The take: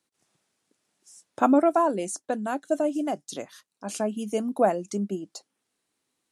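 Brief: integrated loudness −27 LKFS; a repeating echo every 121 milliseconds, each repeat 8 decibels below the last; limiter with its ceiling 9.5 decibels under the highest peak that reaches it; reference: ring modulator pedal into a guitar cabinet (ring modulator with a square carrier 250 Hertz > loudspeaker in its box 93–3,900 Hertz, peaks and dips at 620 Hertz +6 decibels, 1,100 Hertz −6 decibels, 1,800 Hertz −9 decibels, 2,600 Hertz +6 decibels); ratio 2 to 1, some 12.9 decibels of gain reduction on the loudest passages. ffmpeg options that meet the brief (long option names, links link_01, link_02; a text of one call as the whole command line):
ffmpeg -i in.wav -af "acompressor=threshold=-40dB:ratio=2,alimiter=level_in=4.5dB:limit=-24dB:level=0:latency=1,volume=-4.5dB,aecho=1:1:121|242|363|484|605:0.398|0.159|0.0637|0.0255|0.0102,aeval=exprs='val(0)*sgn(sin(2*PI*250*n/s))':channel_layout=same,highpass=93,equalizer=frequency=620:width_type=q:width=4:gain=6,equalizer=frequency=1100:width_type=q:width=4:gain=-6,equalizer=frequency=1800:width_type=q:width=4:gain=-9,equalizer=frequency=2600:width_type=q:width=4:gain=6,lowpass=frequency=3900:width=0.5412,lowpass=frequency=3900:width=1.3066,volume=12dB" out.wav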